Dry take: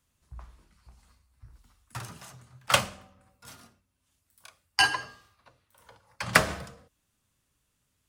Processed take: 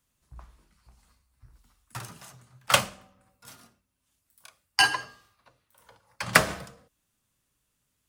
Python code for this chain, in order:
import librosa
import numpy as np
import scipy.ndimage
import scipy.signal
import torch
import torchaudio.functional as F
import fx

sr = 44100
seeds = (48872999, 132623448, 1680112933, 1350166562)

p1 = fx.high_shelf(x, sr, hz=11000.0, db=5.0)
p2 = np.sign(p1) * np.maximum(np.abs(p1) - 10.0 ** (-41.5 / 20.0), 0.0)
p3 = p1 + (p2 * 10.0 ** (-8.0 / 20.0))
p4 = fx.peak_eq(p3, sr, hz=80.0, db=-7.0, octaves=0.47)
y = p4 * 10.0 ** (-1.5 / 20.0)